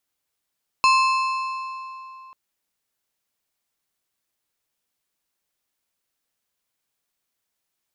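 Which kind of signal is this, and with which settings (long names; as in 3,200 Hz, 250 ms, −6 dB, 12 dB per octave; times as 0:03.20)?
struck metal plate, length 1.49 s, lowest mode 1,050 Hz, modes 6, decay 3.09 s, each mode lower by 5 dB, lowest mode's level −13.5 dB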